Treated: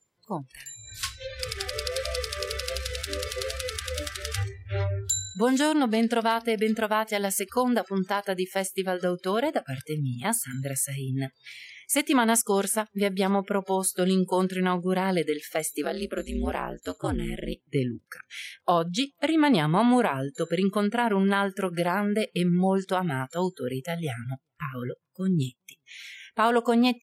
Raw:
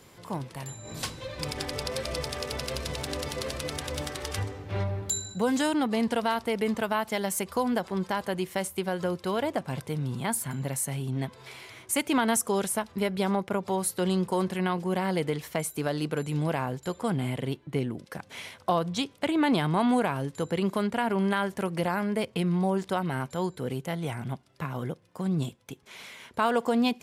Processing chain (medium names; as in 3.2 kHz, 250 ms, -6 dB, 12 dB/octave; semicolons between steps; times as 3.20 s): echo from a far wall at 70 m, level -27 dB; spectral noise reduction 28 dB; 15.84–17.60 s: ring modulator 93 Hz; trim +3 dB